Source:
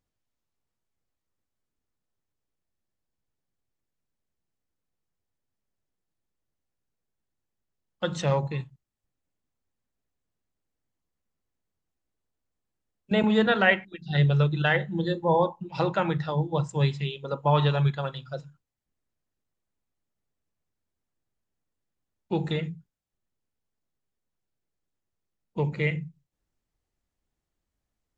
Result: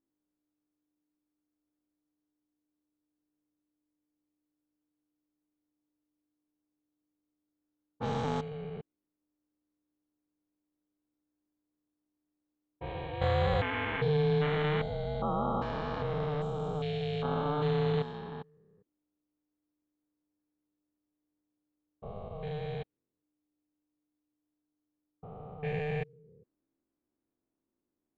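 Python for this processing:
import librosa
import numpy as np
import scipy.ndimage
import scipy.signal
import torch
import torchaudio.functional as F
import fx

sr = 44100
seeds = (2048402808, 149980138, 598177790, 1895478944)

y = fx.spec_steps(x, sr, hold_ms=400)
y = fx.env_lowpass(y, sr, base_hz=1300.0, full_db=-24.0)
y = y * np.sin(2.0 * np.pi * 300.0 * np.arange(len(y)) / sr)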